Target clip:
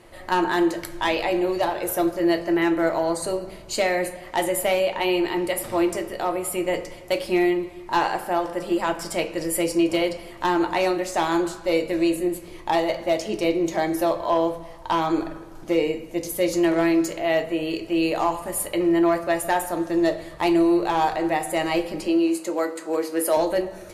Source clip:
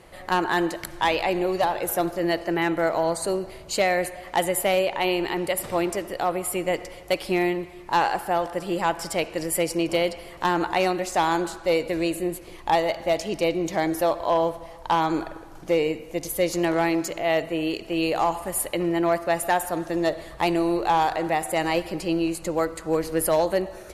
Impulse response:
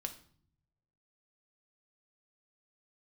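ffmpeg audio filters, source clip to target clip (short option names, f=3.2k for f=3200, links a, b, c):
-filter_complex "[0:a]asettb=1/sr,asplit=3[a][b][c];[a]atrim=end=22.064[d];[b]atrim=start=22.06:end=23.37,asetpts=PTS-STARTPTS,afade=t=in:d=0.004:c=qsin,afade=t=out:st=1.306:d=0.004:c=qsin,highpass=f=250:w=0.5412,highpass=f=250:w=1.3066[e];[c]atrim=start=23.366[f];[d][e]acrossfade=d=0.004:c1=hsin:c2=qsin[g];[g][f]acrossfade=d=0.004:c1=qsin:c2=hsin[h];[1:a]atrim=start_sample=2205,asetrate=74970,aresample=44100[i];[h][i]afir=irnorm=-1:irlink=0,volume=6dB"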